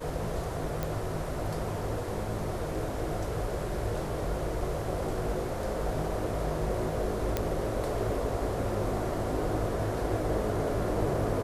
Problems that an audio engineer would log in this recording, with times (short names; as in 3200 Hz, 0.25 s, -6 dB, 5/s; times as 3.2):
0.83 pop
7.37 pop -13 dBFS